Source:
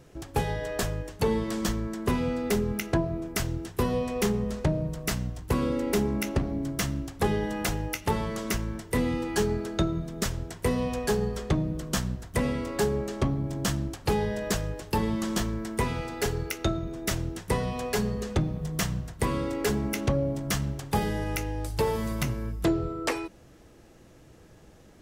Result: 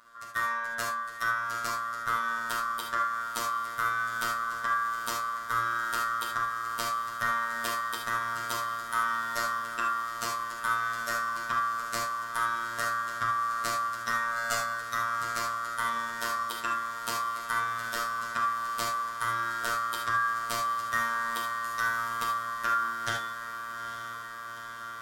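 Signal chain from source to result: split-band scrambler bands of 1 kHz; echo that smears into a reverb 857 ms, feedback 78%, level -11 dB; robot voice 116 Hz; 14.31–14.74 s: comb 7.2 ms, depth 79%; gated-style reverb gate 100 ms flat, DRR 0 dB; trim -4 dB

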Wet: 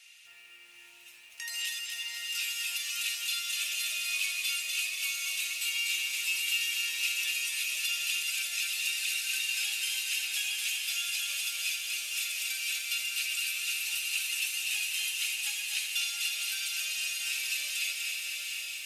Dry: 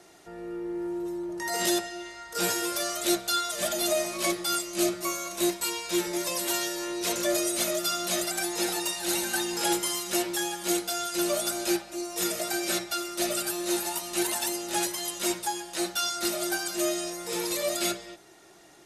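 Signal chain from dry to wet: tilt EQ +1.5 dB/octave; compression 16:1, threshold -30 dBFS, peak gain reduction 12 dB; resonant high-pass 2.6 kHz, resonance Q 8.6; on a send: echo that smears into a reverb 716 ms, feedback 53%, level -4 dB; on the sum: bit-crushed delay 246 ms, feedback 55%, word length 9-bit, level -4 dB; trim -5.5 dB

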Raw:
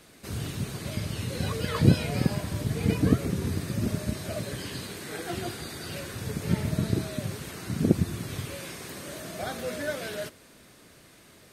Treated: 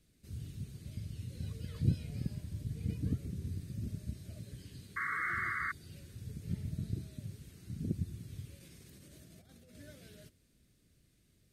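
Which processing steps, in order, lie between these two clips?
amplifier tone stack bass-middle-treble 10-0-1; 4.96–5.72 s: painted sound noise 1.1–2.2 kHz -38 dBFS; 8.59–9.75 s: compressor with a negative ratio -59 dBFS, ratio -1; trim +2 dB

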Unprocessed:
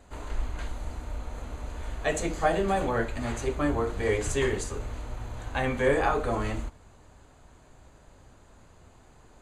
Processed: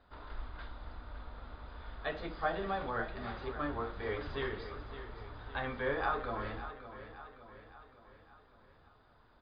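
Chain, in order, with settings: rippled Chebyshev low-pass 5 kHz, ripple 9 dB; feedback delay 562 ms, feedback 52%, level -12 dB; trim -3.5 dB

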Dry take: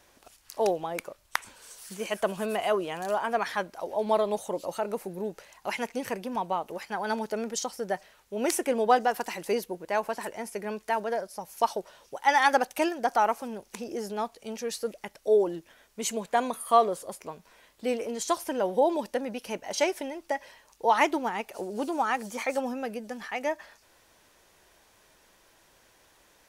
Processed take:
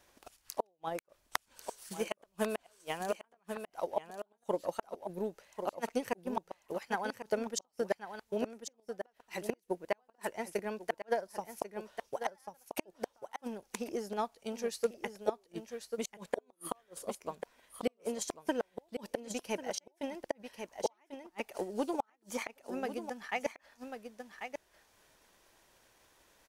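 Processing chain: inverted gate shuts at -19 dBFS, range -37 dB; delay 1092 ms -7.5 dB; transient shaper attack +7 dB, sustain -4 dB; trim -6 dB

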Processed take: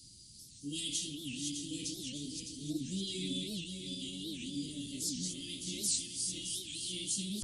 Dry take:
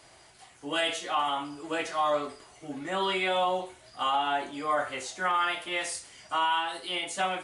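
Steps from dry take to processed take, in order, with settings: backward echo that repeats 304 ms, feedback 67%, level -4 dB; elliptic band-stop 240–4400 Hz, stop band 60 dB; warped record 78 rpm, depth 250 cents; trim +4.5 dB

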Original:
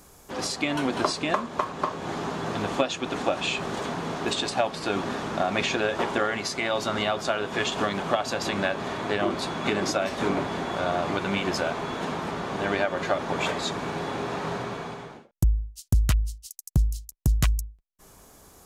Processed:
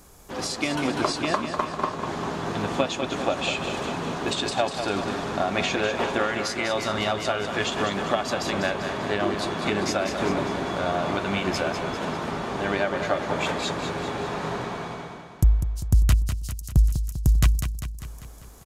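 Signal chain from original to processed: bass shelf 76 Hz +6 dB; on a send: feedback delay 198 ms, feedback 57%, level -8 dB

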